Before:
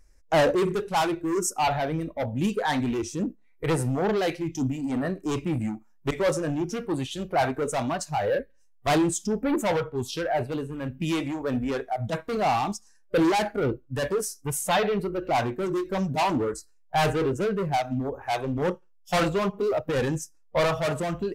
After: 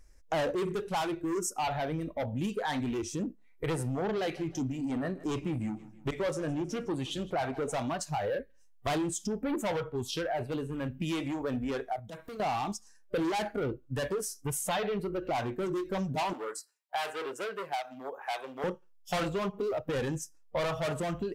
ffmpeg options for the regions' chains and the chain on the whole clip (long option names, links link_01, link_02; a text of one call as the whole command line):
ffmpeg -i in.wav -filter_complex "[0:a]asettb=1/sr,asplit=3[link_01][link_02][link_03];[link_01]atrim=end=3.834[link_04];[link_02]atrim=start=3.83:end=7.78,asetpts=PTS-STARTPTS,afade=type=in:duration=0.004:curve=qsin,afade=type=out:start_time=3.946:duration=0.004:curve=qsin,highshelf=frequency=7600:gain=-4.5,aecho=1:1:159|318|477:0.0841|0.0387|0.0178,atrim=end_sample=174195[link_05];[link_03]atrim=start=7.776[link_06];[link_04][link_05]acrossfade=duration=0.004:curve1=hsin:curve2=qsin[link_07];[link_07][link_06]acrossfade=duration=0.004:curve1=qsin:curve2=hsin,asettb=1/sr,asplit=3[link_08][link_09][link_10];[link_08]atrim=end=11.994[link_11];[link_09]atrim=start=11.99:end=12.4,asetpts=PTS-STARTPTS,afade=type=in:duration=0.004:curve=qsin,afade=type=out:start_time=0.406:duration=0.004:curve=qsin,highshelf=frequency=10000:gain=10,acompressor=threshold=-42dB:ratio=6:attack=3.2:release=140:knee=1:detection=peak[link_12];[link_10]atrim=start=12.396[link_13];[link_11][link_12]acrossfade=duration=0.004:curve1=hsin:curve2=qsin[link_14];[link_14][link_13]acrossfade=duration=0.004:curve1=qsin:curve2=hsin,asettb=1/sr,asplit=3[link_15][link_16][link_17];[link_15]atrim=end=16.334[link_18];[link_16]atrim=start=16.33:end=18.64,asetpts=PTS-STARTPTS,afade=type=in:duration=0.004:curve=qsin,afade=type=out:start_time=2.306:duration=0.004:curve=qsin,highpass=700,equalizer=frequency=6400:width_type=o:width=0.22:gain=-5[link_19];[link_17]atrim=start=18.636[link_20];[link_18][link_19]acrossfade=duration=0.004:curve1=hsin:curve2=qsin[link_21];[link_21][link_20]acrossfade=duration=0.004:curve1=qsin:curve2=hsin,equalizer=frequency=3200:width_type=o:width=0.24:gain=2.5,acompressor=threshold=-32dB:ratio=3" out.wav